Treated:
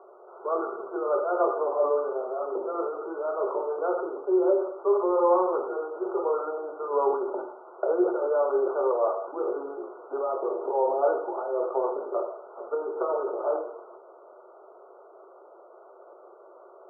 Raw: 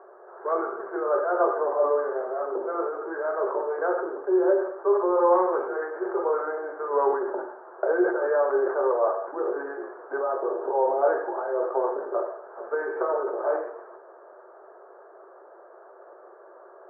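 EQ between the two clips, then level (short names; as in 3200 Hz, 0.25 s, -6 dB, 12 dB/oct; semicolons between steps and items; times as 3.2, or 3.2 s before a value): brick-wall FIR low-pass 1500 Hz; air absorption 480 m; 0.0 dB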